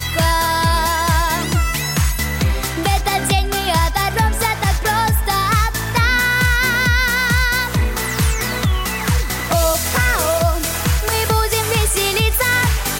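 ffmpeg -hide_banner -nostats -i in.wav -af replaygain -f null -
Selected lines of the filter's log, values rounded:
track_gain = -0.0 dB
track_peak = 0.409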